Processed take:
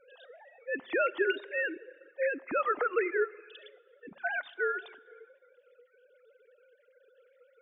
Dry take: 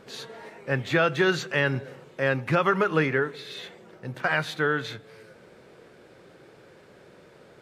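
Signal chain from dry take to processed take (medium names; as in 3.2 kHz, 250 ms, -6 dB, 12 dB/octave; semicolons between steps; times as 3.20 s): formants replaced by sine waves; on a send at -9 dB: reverberation RT60 1.5 s, pre-delay 35 ms; on the sum: reverb removal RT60 0.7 s; trim -6.5 dB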